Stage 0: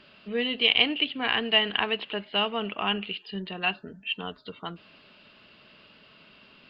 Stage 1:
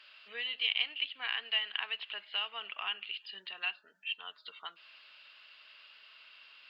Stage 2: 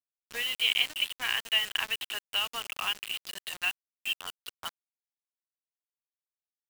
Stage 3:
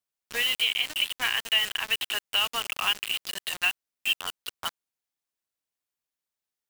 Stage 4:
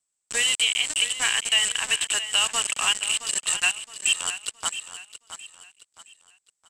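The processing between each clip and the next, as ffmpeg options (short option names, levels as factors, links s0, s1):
-af "highpass=1400,acompressor=threshold=0.00631:ratio=1.5"
-af "acrusher=bits=6:mix=0:aa=0.000001,volume=1.78"
-af "alimiter=limit=0.106:level=0:latency=1:release=97,volume=2"
-filter_complex "[0:a]lowpass=f=7900:t=q:w=12,asplit=2[s0][s1];[s1]aecho=0:1:668|1336|2004|2672:0.251|0.0904|0.0326|0.0117[s2];[s0][s2]amix=inputs=2:normalize=0,volume=1.19"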